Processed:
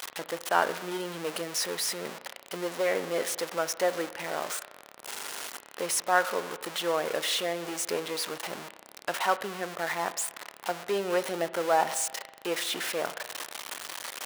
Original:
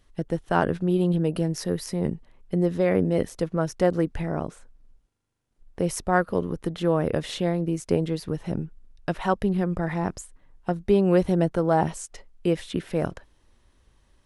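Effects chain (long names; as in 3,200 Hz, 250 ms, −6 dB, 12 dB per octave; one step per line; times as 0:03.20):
converter with a step at zero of −27 dBFS
high-pass filter 700 Hz 12 dB per octave
spring reverb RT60 1.4 s, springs 35 ms, chirp 50 ms, DRR 14 dB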